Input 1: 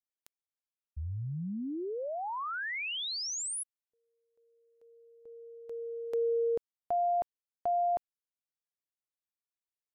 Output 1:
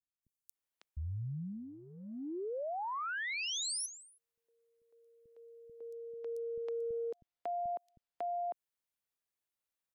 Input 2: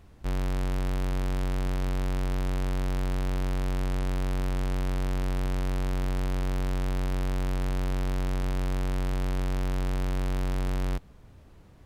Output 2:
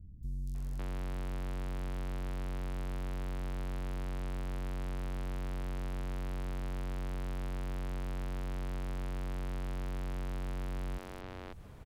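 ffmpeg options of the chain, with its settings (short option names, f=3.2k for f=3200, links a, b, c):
-filter_complex "[0:a]acompressor=threshold=-40dB:ratio=5:attack=2.6:release=105:knee=6:detection=rms,acrossover=split=230|5300[a][b][c];[c]adelay=230[d];[b]adelay=550[e];[a][e][d]amix=inputs=3:normalize=0,volume=3.5dB"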